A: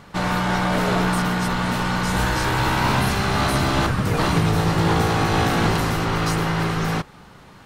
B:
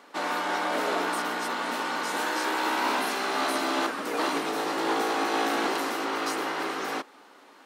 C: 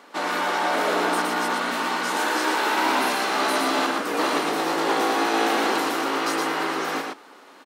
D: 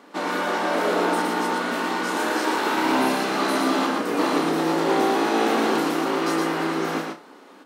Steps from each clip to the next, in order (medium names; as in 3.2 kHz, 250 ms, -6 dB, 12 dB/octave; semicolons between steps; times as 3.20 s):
elliptic high-pass 270 Hz, stop band 80 dB; trim -4.5 dB
delay 116 ms -4 dB; trim +3.5 dB
bass shelf 390 Hz +12 dB; flutter echo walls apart 5.3 m, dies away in 0.24 s; trim -3.5 dB